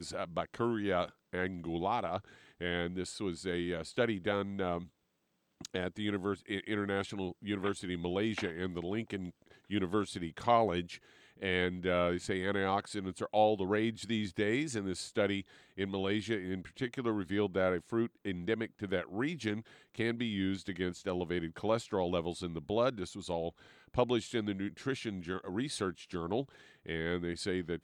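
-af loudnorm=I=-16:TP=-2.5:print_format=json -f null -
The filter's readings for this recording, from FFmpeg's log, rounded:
"input_i" : "-35.4",
"input_tp" : "-13.6",
"input_lra" : "4.4",
"input_thresh" : "-45.6",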